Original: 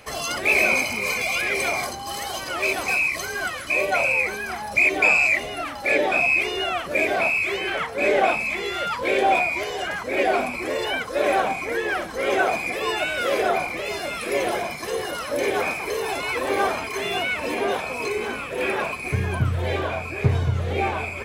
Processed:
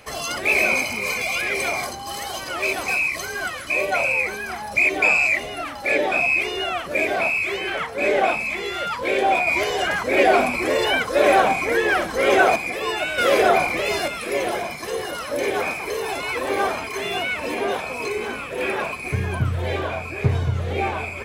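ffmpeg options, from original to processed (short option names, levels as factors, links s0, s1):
-filter_complex "[0:a]asettb=1/sr,asplit=3[s0][s1][s2];[s0]atrim=end=9.474[s3];[s1]atrim=start=9.47:end=12.56,asetpts=PTS-STARTPTS,afade=t=in:d=0.004:c=qsin,afade=t=out:st=3.086:d=0.004:c=qsin,acontrast=39[s4];[s2]atrim=start=12.556[s5];[s3][s4]acrossfade=d=0.004:c1=hsin:c2=qsin[s6];[s6][s5]acrossfade=d=0.004:c1=qsin:c2=hsin,asettb=1/sr,asplit=3[s7][s8][s9];[s7]atrim=end=13.184[s10];[s8]atrim=start=13.18:end=14.08,asetpts=PTS-STARTPTS,afade=t=in:d=0.004:c=qsin,afade=t=out:st=0.896:d=0.004:c=qsin,acontrast=41[s11];[s9]atrim=start=14.076[s12];[s10][s11]acrossfade=d=0.004:c1=hsin:c2=qsin[s13];[s13][s12]acrossfade=d=0.004:c1=qsin:c2=hsin"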